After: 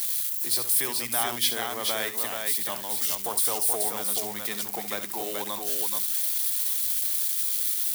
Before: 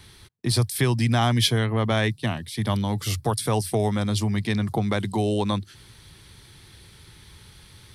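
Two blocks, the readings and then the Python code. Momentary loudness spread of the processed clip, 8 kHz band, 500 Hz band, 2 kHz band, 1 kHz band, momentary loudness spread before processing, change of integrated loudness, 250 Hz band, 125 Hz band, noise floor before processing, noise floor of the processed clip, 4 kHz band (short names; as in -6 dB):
7 LU, +8.5 dB, -7.5 dB, -3.5 dB, -4.5 dB, 7 LU, -0.5 dB, -16.5 dB, -28.0 dB, -51 dBFS, -35 dBFS, -1.5 dB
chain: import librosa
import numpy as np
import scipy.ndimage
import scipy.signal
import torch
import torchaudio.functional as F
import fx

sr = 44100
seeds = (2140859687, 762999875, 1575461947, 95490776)

y = x + 0.5 * 10.0 ** (-21.5 / 20.0) * np.diff(np.sign(x), prepend=np.sign(x[:1]))
y = scipy.signal.sosfilt(scipy.signal.butter(2, 480.0, 'highpass', fs=sr, output='sos'), y)
y = fx.high_shelf(y, sr, hz=10000.0, db=11.0)
y = fx.echo_multitap(y, sr, ms=(68, 429), db=(-11.5, -4.0))
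y = y * librosa.db_to_amplitude(-6.0)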